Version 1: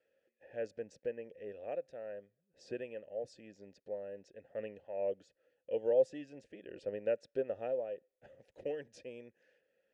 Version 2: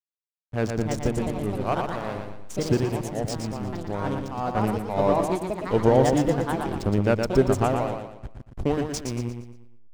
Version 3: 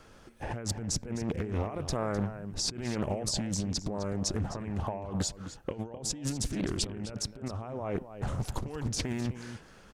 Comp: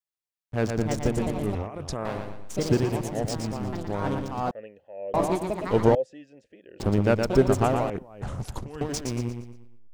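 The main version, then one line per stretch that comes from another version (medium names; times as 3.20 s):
2
1.55–2.05 s: from 3
4.51–5.14 s: from 1
5.95–6.80 s: from 1
7.90–8.81 s: from 3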